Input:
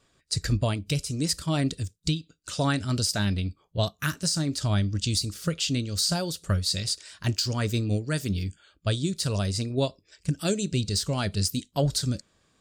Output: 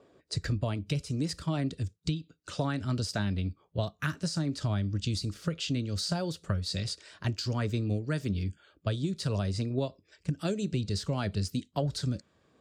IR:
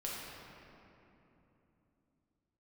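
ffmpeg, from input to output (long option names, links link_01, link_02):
-filter_complex "[0:a]acrossover=split=320|590|4300[link_01][link_02][link_03][link_04];[link_02]acompressor=mode=upward:threshold=-49dB:ratio=2.5[link_05];[link_01][link_05][link_03][link_04]amix=inputs=4:normalize=0,highpass=62,aemphasis=mode=reproduction:type=75kf,acompressor=threshold=-26dB:ratio=6"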